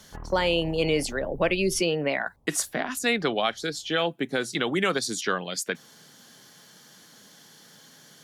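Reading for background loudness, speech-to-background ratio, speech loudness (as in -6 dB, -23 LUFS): -45.0 LUFS, 18.5 dB, -26.5 LUFS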